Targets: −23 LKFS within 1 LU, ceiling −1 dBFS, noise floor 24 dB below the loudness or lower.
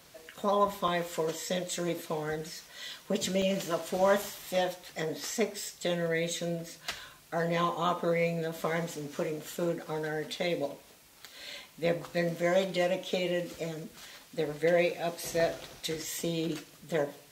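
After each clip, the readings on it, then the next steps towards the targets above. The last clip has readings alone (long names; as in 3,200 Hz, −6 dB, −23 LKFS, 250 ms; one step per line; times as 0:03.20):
number of dropouts 5; longest dropout 2.8 ms; integrated loudness −32.0 LKFS; sample peak −14.5 dBFS; target loudness −23.0 LKFS
→ repair the gap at 0:00.88/0:03.42/0:04.22/0:11.53/0:15.40, 2.8 ms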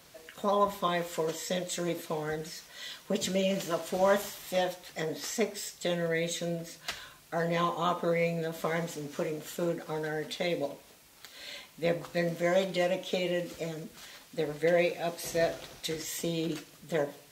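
number of dropouts 0; integrated loudness −32.0 LKFS; sample peak −14.5 dBFS; target loudness −23.0 LKFS
→ level +9 dB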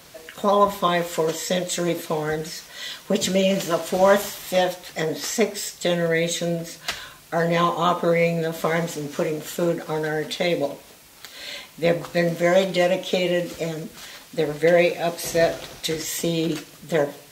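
integrated loudness −23.0 LKFS; sample peak −5.5 dBFS; background noise floor −47 dBFS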